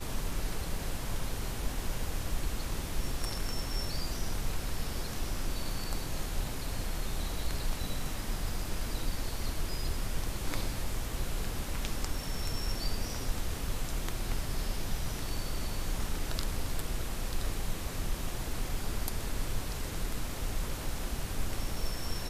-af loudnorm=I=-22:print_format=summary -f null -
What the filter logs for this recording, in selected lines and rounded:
Input Integrated:    -37.3 LUFS
Input True Peak:     -12.4 dBTP
Input LRA:             0.8 LU
Input Threshold:     -47.3 LUFS